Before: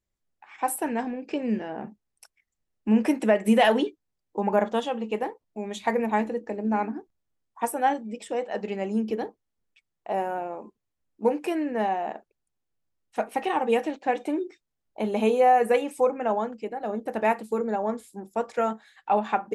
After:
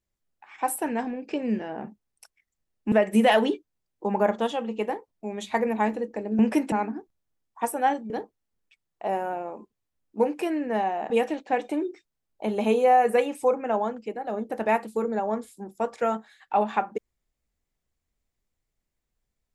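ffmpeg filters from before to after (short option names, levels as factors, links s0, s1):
-filter_complex "[0:a]asplit=6[s0][s1][s2][s3][s4][s5];[s0]atrim=end=2.922[s6];[s1]atrim=start=3.248:end=6.722[s7];[s2]atrim=start=2.918:end=3.252[s8];[s3]atrim=start=6.718:end=8.102[s9];[s4]atrim=start=9.148:end=12.152[s10];[s5]atrim=start=13.658[s11];[s6][s7]acrossfade=d=0.004:c1=hsin:c2=hsin[s12];[s12][s8]acrossfade=d=0.004:c1=hsin:c2=hsin[s13];[s13][s9]acrossfade=d=0.004:c1=hsin:c2=hsin[s14];[s14][s10]acrossfade=d=0.004:c1=hsin:c2=hsin[s15];[s15][s11]acrossfade=d=0.004:c1=hsin:c2=hsin"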